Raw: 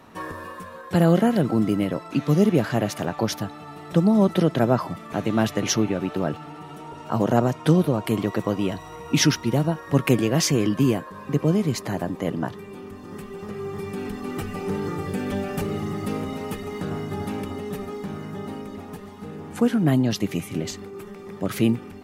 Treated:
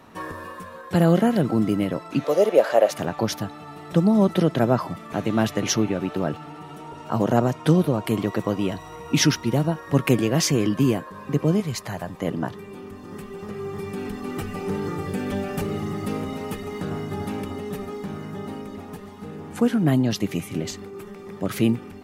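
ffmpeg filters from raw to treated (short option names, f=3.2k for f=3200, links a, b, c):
-filter_complex "[0:a]asettb=1/sr,asplit=3[a][b][c];[a]atrim=end=2.244[d];[b]atrim=start=2.24:end=2.91,asetpts=PTS-STARTPTS,afade=t=in:d=0.004:c=qsin,afade=t=out:st=0.666:d=0.004:c=qsin,highpass=f=550:t=q:w=4.7[e];[c]atrim=start=2.906[f];[d][e]acrossfade=d=0.004:c1=hsin:c2=qsin[g];[g][f]acrossfade=d=0.004:c1=qsin:c2=hsin,asettb=1/sr,asplit=3[h][i][j];[h]atrim=end=11.604[k];[i]atrim=start=11.6:end=12.22,asetpts=PTS-STARTPTS,afade=t=in:d=0.004:c=qsin,afade=t=out:st=0.616:d=0.004:c=qsin,equalizer=f=300:t=o:w=1.2:g=-12.5[l];[j]atrim=start=12.216[m];[k][l]acrossfade=d=0.004:c1=hsin:c2=qsin[n];[n][m]acrossfade=d=0.004:c1=qsin:c2=hsin"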